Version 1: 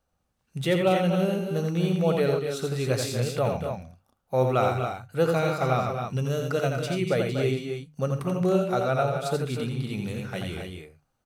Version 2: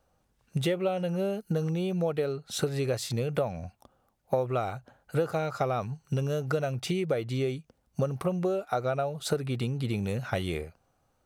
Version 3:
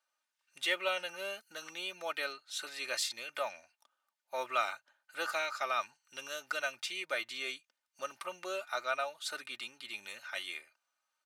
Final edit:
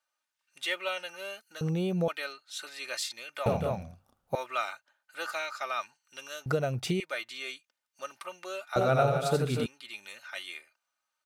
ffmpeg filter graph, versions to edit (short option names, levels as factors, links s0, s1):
-filter_complex "[1:a]asplit=2[s0][s1];[0:a]asplit=2[s2][s3];[2:a]asplit=5[s4][s5][s6][s7][s8];[s4]atrim=end=1.612[s9];[s0]atrim=start=1.608:end=2.082[s10];[s5]atrim=start=2.078:end=3.462[s11];[s2]atrim=start=3.458:end=4.352[s12];[s6]atrim=start=4.348:end=6.462[s13];[s1]atrim=start=6.458:end=7.002[s14];[s7]atrim=start=6.998:end=8.762[s15];[s3]atrim=start=8.758:end=9.662[s16];[s8]atrim=start=9.658[s17];[s9][s10]acrossfade=d=0.004:c1=hsin:c2=hsin[s18];[s18][s11]acrossfade=d=0.004:c1=hsin:c2=hsin[s19];[s19][s12]acrossfade=d=0.004:c1=hsin:c2=hsin[s20];[s20][s13]acrossfade=d=0.004:c1=hsin:c2=hsin[s21];[s21][s14]acrossfade=d=0.004:c1=hsin:c2=hsin[s22];[s22][s15]acrossfade=d=0.004:c1=hsin:c2=hsin[s23];[s23][s16]acrossfade=d=0.004:c1=hsin:c2=hsin[s24];[s24][s17]acrossfade=d=0.004:c1=hsin:c2=hsin"